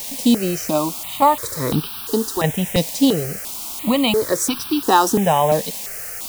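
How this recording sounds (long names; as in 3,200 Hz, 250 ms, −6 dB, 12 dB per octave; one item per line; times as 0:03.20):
tremolo saw down 0.82 Hz, depth 55%
a quantiser's noise floor 6 bits, dither triangular
notches that jump at a steady rate 2.9 Hz 370–2,000 Hz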